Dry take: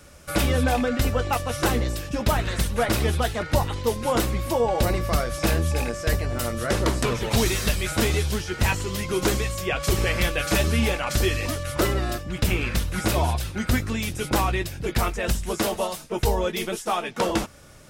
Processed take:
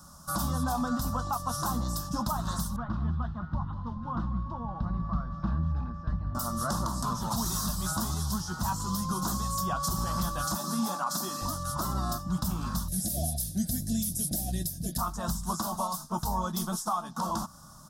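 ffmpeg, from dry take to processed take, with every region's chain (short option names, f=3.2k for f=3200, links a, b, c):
-filter_complex "[0:a]asettb=1/sr,asplit=3[a][b][c];[a]atrim=end=2.764[d];[b]atrim=start=2.76:end=6.35,asetpts=PTS-STARTPTS,afade=t=in:d=0.004:c=qsin,afade=t=out:st=3.586:d=0.004:c=qsin,lowpass=f=2.3k:w=0.5412,lowpass=f=2.3k:w=1.3066,equalizer=f=710:w=0.51:g=-14.5,aecho=1:1:194|388|582|776|970:0.168|0.0923|0.0508|0.0279|0.0154,atrim=end_sample=158319[e];[c]atrim=start=6.346[f];[d][e]acrossfade=d=0.004:c1=hsin:c2=qsin[g];[g][f]acrossfade=d=0.004:c1=qsin:c2=hsin,asettb=1/sr,asplit=3[h][i][j];[h]atrim=end=10.564[k];[i]atrim=start=10.56:end=11.42,asetpts=PTS-STARTPTS,afade=t=in:d=0.004:c=qsin,afade=t=out:st=0.856:d=0.004:c=qsin,highpass=f=200:w=0.5412,highpass=f=200:w=1.3066,bandreject=f=3k:w=14[l];[j]atrim=start=11.416[m];[k][l]acrossfade=d=0.004:c1=hsin:c2=qsin[n];[n][m]acrossfade=d=0.004:c1=qsin:c2=hsin,asettb=1/sr,asplit=3[o][p][q];[o]atrim=end=12.884[r];[p]atrim=start=12.88:end=14.98,asetpts=PTS-STARTPTS,afade=t=in:d=0.004:c=qsin,afade=t=out:st=2.096:d=0.004:c=qsin,asuperstop=centerf=1100:order=12:qfactor=1.1,equalizer=f=11k:t=o:w=0.62:g=14[s];[q]atrim=start=14.976[t];[r][s]acrossfade=d=0.004:c1=hsin:c2=qsin[u];[u][t]acrossfade=d=0.004:c1=qsin:c2=hsin,firequalizer=gain_entry='entry(120,0);entry(170,11);entry(430,-16);entry(650,1);entry(1100,13);entry(2200,-27);entry(3500,-3);entry(5300,7);entry(8000,5);entry(14000,9)':delay=0.05:min_phase=1,alimiter=limit=-14.5dB:level=0:latency=1:release=180,volume=-5.5dB"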